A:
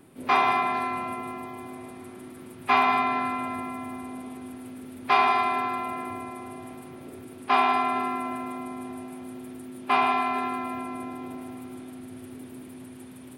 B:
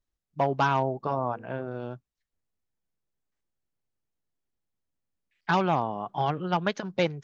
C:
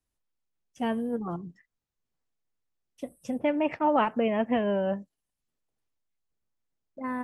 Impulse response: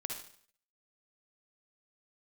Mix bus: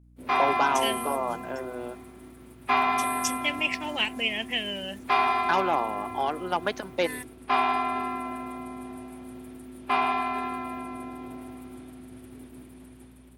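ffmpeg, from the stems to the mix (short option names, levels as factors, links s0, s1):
-filter_complex "[0:a]volume=0.501[s0];[1:a]highpass=f=260:w=0.5412,highpass=f=260:w=1.3066,volume=0.668[s1];[2:a]highshelf=f=5100:g=10,aexciter=amount=15:drive=7:freq=2000,volume=0.178[s2];[s0][s1][s2]amix=inputs=3:normalize=0,agate=range=0.0224:threshold=0.00562:ratio=3:detection=peak,dynaudnorm=f=200:g=3:m=1.5,aeval=exprs='val(0)+0.002*(sin(2*PI*60*n/s)+sin(2*PI*2*60*n/s)/2+sin(2*PI*3*60*n/s)/3+sin(2*PI*4*60*n/s)/4+sin(2*PI*5*60*n/s)/5)':c=same"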